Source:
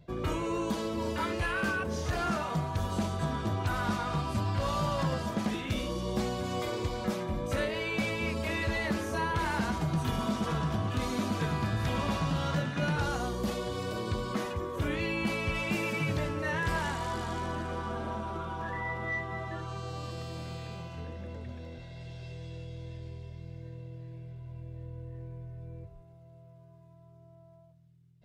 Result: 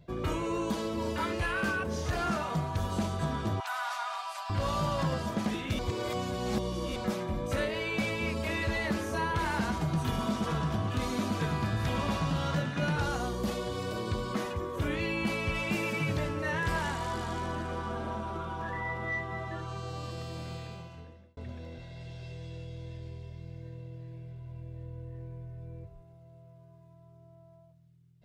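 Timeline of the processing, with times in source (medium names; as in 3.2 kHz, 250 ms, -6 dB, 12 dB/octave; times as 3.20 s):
3.60–4.50 s: steep high-pass 680 Hz 48 dB/octave
5.79–6.96 s: reverse
20.56–21.37 s: fade out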